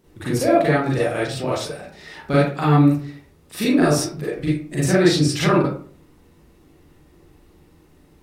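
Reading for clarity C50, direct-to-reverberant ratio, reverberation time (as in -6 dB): 0.5 dB, -8.0 dB, 0.50 s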